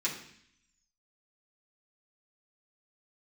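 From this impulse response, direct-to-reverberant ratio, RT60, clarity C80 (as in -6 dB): -7.0 dB, 0.65 s, 10.5 dB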